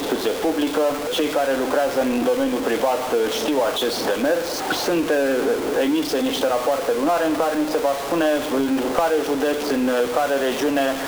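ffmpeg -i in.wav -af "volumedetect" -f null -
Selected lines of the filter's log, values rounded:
mean_volume: -20.7 dB
max_volume: -6.7 dB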